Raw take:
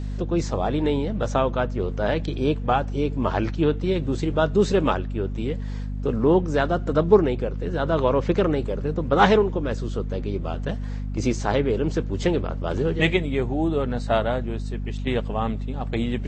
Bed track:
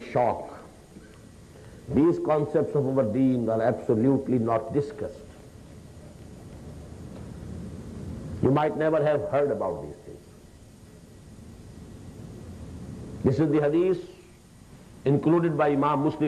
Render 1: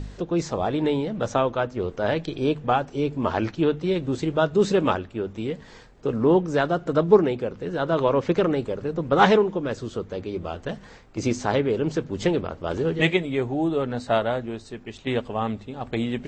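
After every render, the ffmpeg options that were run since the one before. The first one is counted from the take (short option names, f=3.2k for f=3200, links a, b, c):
-af "bandreject=f=50:t=h:w=4,bandreject=f=100:t=h:w=4,bandreject=f=150:t=h:w=4,bandreject=f=200:t=h:w=4,bandreject=f=250:t=h:w=4"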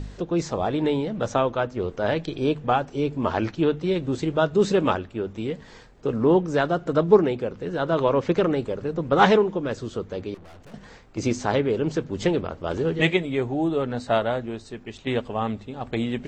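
-filter_complex "[0:a]asettb=1/sr,asplit=3[a][b][c];[a]atrim=end=10.344[d];[b]atrim=start=10.34:end=10.74,asetpts=PTS-STARTPTS,afade=t=in:d=0.004:c=qsin,afade=t=out:st=0.396:d=0.004:c=qsin,aeval=exprs='(tanh(178*val(0)+0.5)-tanh(0.5))/178':c=same[e];[c]atrim=start=10.736[f];[d][e]acrossfade=d=0.004:c1=hsin:c2=qsin[g];[g][f]acrossfade=d=0.004:c1=qsin:c2=hsin"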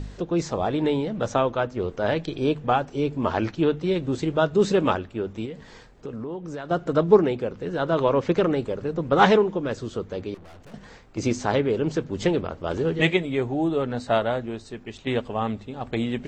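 -filter_complex "[0:a]asettb=1/sr,asplit=3[a][b][c];[a]atrim=end=5.454[d];[b]atrim=start=5.45:end=6.71,asetpts=PTS-STARTPTS,afade=t=in:d=0.004:c=qsin,afade=t=out:st=1.256:d=0.004:c=qsin,acompressor=threshold=-31dB:ratio=6:attack=3.2:release=140:knee=1:detection=peak[e];[c]atrim=start=6.706[f];[d][e]acrossfade=d=0.004:c1=hsin:c2=qsin[g];[g][f]acrossfade=d=0.004:c1=qsin:c2=hsin"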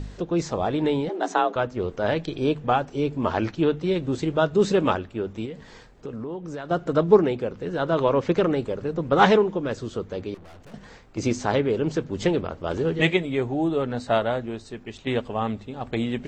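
-filter_complex "[0:a]asettb=1/sr,asplit=3[a][b][c];[a]atrim=end=1.094[d];[b]atrim=start=1.09:end=1.56,asetpts=PTS-STARTPTS,afade=t=in:d=0.004:c=qsin,afade=t=out:st=0.466:d=0.004:c=qsin,afreqshift=170[e];[c]atrim=start=1.556[f];[d][e]acrossfade=d=0.004:c1=hsin:c2=qsin[g];[g][f]acrossfade=d=0.004:c1=qsin:c2=hsin"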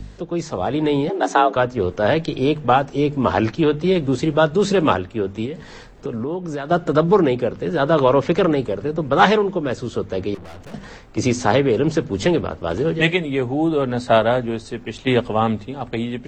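-filter_complex "[0:a]acrossover=split=130|610|1200[a][b][c][d];[b]alimiter=limit=-18dB:level=0:latency=1[e];[a][e][c][d]amix=inputs=4:normalize=0,dynaudnorm=f=140:g=11:m=9.5dB"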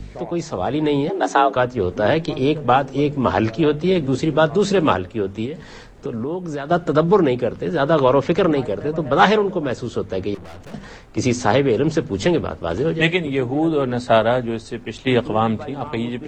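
-filter_complex "[1:a]volume=-11dB[a];[0:a][a]amix=inputs=2:normalize=0"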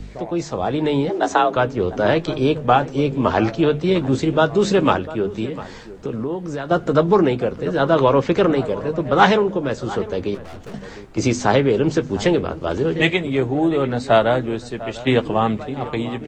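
-filter_complex "[0:a]asplit=2[a][b];[b]adelay=15,volume=-12.5dB[c];[a][c]amix=inputs=2:normalize=0,asplit=2[d][e];[e]adelay=699.7,volume=-16dB,highshelf=f=4k:g=-15.7[f];[d][f]amix=inputs=2:normalize=0"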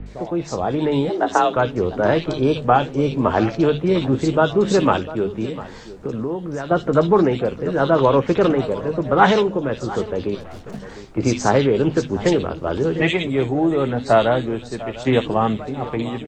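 -filter_complex "[0:a]acrossover=split=2500[a][b];[b]adelay=60[c];[a][c]amix=inputs=2:normalize=0"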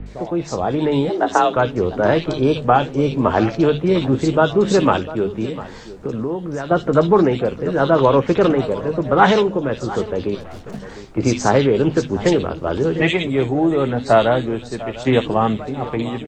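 -af "volume=1.5dB,alimiter=limit=-1dB:level=0:latency=1"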